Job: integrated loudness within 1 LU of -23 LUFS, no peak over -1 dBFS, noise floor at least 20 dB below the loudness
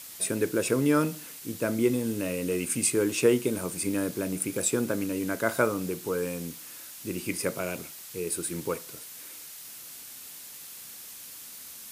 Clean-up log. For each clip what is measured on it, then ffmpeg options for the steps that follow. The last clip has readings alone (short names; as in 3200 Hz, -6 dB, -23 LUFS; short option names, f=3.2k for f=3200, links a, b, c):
noise floor -44 dBFS; noise floor target -49 dBFS; loudness -28.5 LUFS; peak -9.0 dBFS; loudness target -23.0 LUFS
-> -af "afftdn=nr=6:nf=-44"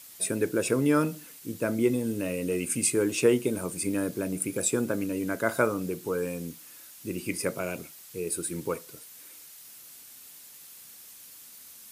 noise floor -49 dBFS; loudness -28.5 LUFS; peak -9.0 dBFS; loudness target -23.0 LUFS
-> -af "volume=5.5dB"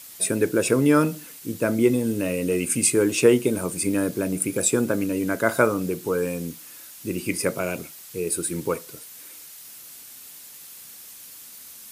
loudness -23.0 LUFS; peak -3.5 dBFS; noise floor -44 dBFS